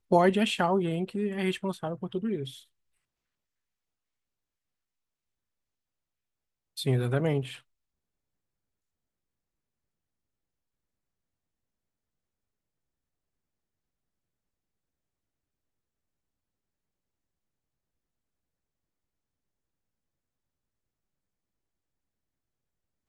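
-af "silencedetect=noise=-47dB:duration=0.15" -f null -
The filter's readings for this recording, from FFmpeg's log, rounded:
silence_start: 2.62
silence_end: 6.77 | silence_duration: 4.15
silence_start: 7.59
silence_end: 23.08 | silence_duration: 15.49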